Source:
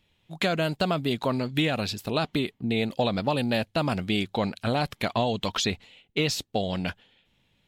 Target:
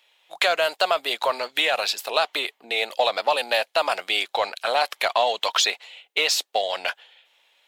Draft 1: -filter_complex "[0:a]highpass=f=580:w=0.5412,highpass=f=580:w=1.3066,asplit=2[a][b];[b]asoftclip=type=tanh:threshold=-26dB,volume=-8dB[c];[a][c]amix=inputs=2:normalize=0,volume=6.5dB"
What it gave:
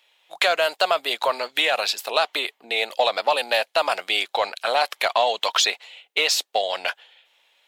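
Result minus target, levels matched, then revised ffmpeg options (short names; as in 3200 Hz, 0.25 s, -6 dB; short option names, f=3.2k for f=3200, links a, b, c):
soft clip: distortion -6 dB
-filter_complex "[0:a]highpass=f=580:w=0.5412,highpass=f=580:w=1.3066,asplit=2[a][b];[b]asoftclip=type=tanh:threshold=-34.5dB,volume=-8dB[c];[a][c]amix=inputs=2:normalize=0,volume=6.5dB"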